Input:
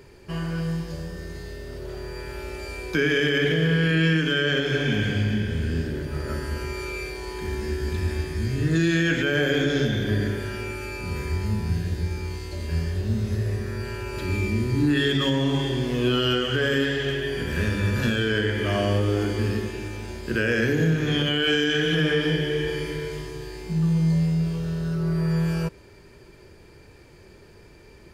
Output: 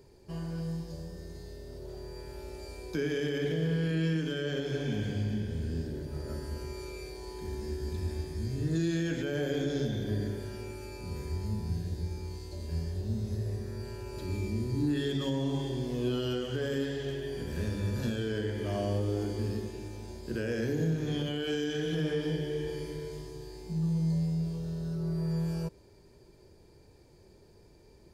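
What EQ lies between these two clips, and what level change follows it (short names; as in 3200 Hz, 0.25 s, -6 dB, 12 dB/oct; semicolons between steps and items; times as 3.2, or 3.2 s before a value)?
band shelf 1900 Hz -9 dB; -8.0 dB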